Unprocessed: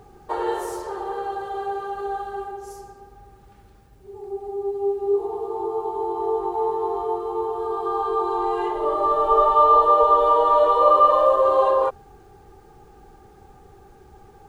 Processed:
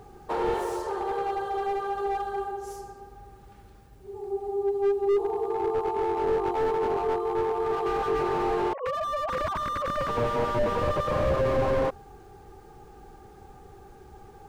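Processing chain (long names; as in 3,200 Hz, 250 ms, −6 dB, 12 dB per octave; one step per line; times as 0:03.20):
0:08.73–0:10.09: three sine waves on the formant tracks
slew-rate limiting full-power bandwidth 41 Hz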